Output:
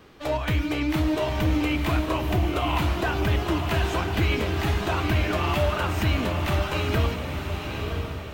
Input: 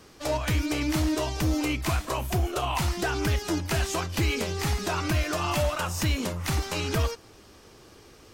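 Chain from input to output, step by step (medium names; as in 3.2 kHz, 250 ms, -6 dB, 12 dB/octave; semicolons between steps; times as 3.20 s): high-order bell 7.7 kHz -11.5 dB; echo that smears into a reverb 939 ms, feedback 41%, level -4.5 dB; on a send at -14 dB: reverberation, pre-delay 3 ms; on the sum: trim +1.5 dB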